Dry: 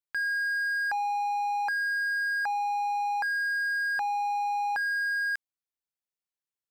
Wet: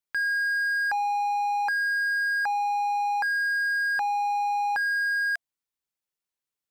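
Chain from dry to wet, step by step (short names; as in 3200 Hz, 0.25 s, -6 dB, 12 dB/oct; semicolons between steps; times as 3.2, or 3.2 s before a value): notch 680 Hz, Q 14; gain +3 dB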